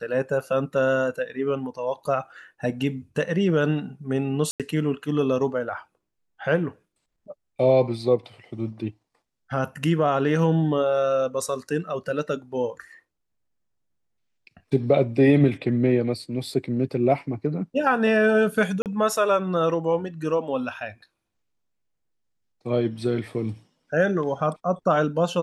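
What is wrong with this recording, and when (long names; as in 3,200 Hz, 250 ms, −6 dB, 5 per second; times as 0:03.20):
0:04.51–0:04.60: drop-out 87 ms
0:18.82–0:18.86: drop-out 38 ms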